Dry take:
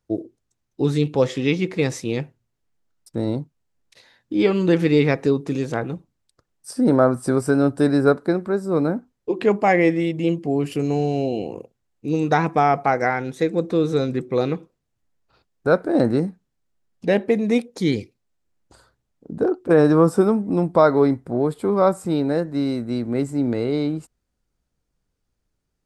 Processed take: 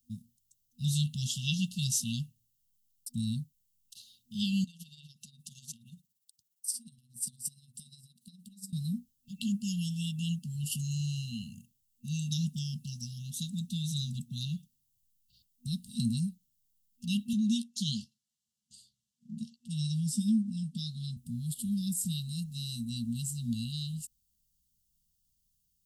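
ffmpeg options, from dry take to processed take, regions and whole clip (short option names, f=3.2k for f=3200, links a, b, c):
-filter_complex "[0:a]asettb=1/sr,asplit=3[a][b][c];[a]atrim=end=4.644[d];[b]atrim=start=4.64:end=8.73,asetpts=PTS-STARTPTS,afade=t=in:d=0.004:c=qsin,afade=t=out:st=4.086:d=0.004:c=qsin,highpass=f=360:p=1,acompressor=threshold=-32dB:ratio=16:attack=3.2:release=140:knee=1:detection=peak,tremolo=f=17:d=0.62[e];[c]atrim=start=8.726[f];[d][e]acrossfade=d=0.004:c1=hsin:c2=qsin[g];[g][f]acrossfade=d=0.004:c1=qsin:c2=hsin,asettb=1/sr,asplit=3[h][i][j];[h]atrim=end=17.334[k];[i]atrim=start=17.33:end=21.17,asetpts=PTS-STARTPTS,afade=t=in:d=0.004:c=qsin,afade=t=out:st=3.836:d=0.004:c=qsin,highpass=170,lowpass=6.7k,asplit=2[l][m];[m]adelay=14,volume=-9dB[n];[l][n]amix=inputs=2:normalize=0,atrim=end_sample=169344[o];[j]atrim=start=21.166[p];[k][o]acrossfade=d=0.004:c1=hsin:c2=qsin[q];[q][p]acrossfade=d=0.004:c1=qsin:c2=hsin,highshelf=f=4.5k:g=5,afftfilt=real='re*(1-between(b*sr/4096,240,2700))':imag='im*(1-between(b*sr/4096,240,2700))':win_size=4096:overlap=0.75,aemphasis=mode=production:type=50fm,volume=-5.5dB"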